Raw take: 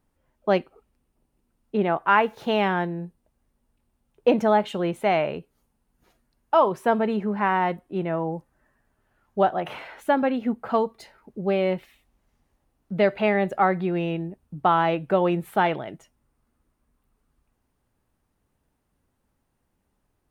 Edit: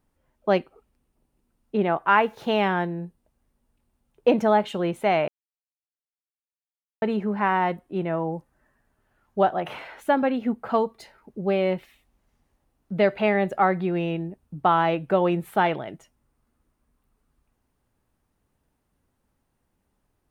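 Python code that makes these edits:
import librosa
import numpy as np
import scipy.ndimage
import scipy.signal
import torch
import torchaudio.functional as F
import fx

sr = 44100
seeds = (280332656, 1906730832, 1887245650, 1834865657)

y = fx.edit(x, sr, fx.silence(start_s=5.28, length_s=1.74), tone=tone)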